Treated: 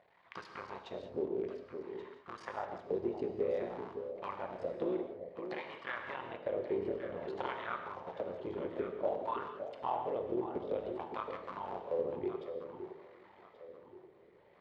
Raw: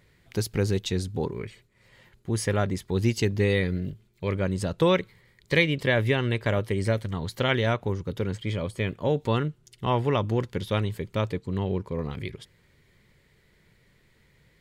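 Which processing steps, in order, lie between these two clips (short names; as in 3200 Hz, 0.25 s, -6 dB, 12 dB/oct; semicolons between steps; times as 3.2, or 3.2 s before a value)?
cycle switcher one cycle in 3, muted; LPF 6600 Hz; bell 3100 Hz +6.5 dB 1.7 oct; compressor, threshold -35 dBFS, peak gain reduction 20 dB; wah 0.55 Hz 370–1200 Hz, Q 5.1; echo with dull and thin repeats by turns 0.565 s, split 800 Hz, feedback 58%, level -8 dB; non-linear reverb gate 0.22 s flat, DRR 5 dB; gain +11 dB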